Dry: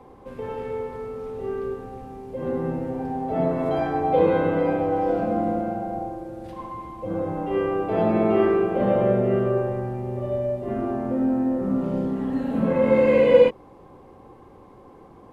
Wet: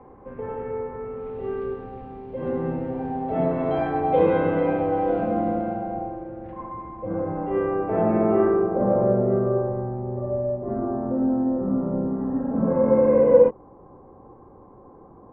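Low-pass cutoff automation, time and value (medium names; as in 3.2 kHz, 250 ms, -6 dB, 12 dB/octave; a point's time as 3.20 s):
low-pass 24 dB/octave
0.95 s 2 kHz
1.47 s 3.4 kHz
5.70 s 3.4 kHz
6.64 s 2 kHz
8.15 s 2 kHz
8.79 s 1.3 kHz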